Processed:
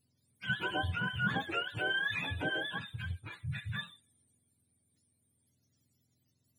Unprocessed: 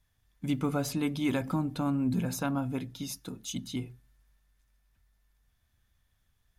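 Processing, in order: spectrum inverted on a logarithmic axis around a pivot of 660 Hz; trim -1 dB

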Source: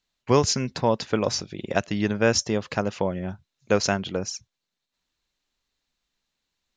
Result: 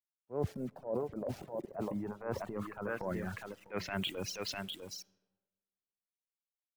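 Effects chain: bass shelf 85 Hz -7.5 dB; on a send: delay 651 ms -8.5 dB; on the sum: low-pass sweep 630 Hz -> 4.1 kHz, 1.36–5.04 s; bit crusher 8-bit; reverse; compression 12:1, threshold -25 dBFS, peak gain reduction 15.5 dB; reverse; transient shaper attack -9 dB, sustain +5 dB; algorithmic reverb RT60 2 s, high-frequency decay 0.5×, pre-delay 20 ms, DRR 14 dB; reverb removal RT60 1.6 s; three bands expanded up and down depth 40%; trim -4.5 dB

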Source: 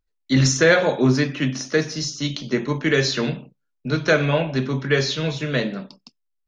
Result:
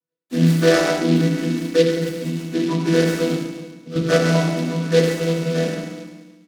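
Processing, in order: vocoder on a held chord minor triad, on E3; high-pass 210 Hz 12 dB/octave; treble shelf 3.5 kHz -6.5 dB; comb 6.2 ms, depth 46%; feedback delay 135 ms, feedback 44%, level -8 dB; 3.36–3.96 s: compression, threshold -33 dBFS, peak gain reduction 12.5 dB; FDN reverb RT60 1.3 s, low-frequency decay 1.05×, high-frequency decay 0.9×, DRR -4.5 dB; 0.98–1.97 s: dynamic bell 890 Hz, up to -6 dB, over -27 dBFS, Q 0.95; delay time shaken by noise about 3.3 kHz, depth 0.053 ms; trim -2 dB

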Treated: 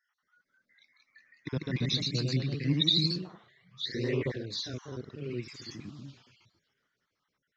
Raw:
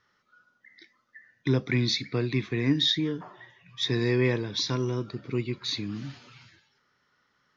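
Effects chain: random holes in the spectrogram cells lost 48%; 1.56–3.18 s: fifteen-band graphic EQ 160 Hz +11 dB, 400 Hz -4 dB, 4 kHz +9 dB; ever faster or slower copies 227 ms, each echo +1 st, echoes 3; trim -8 dB

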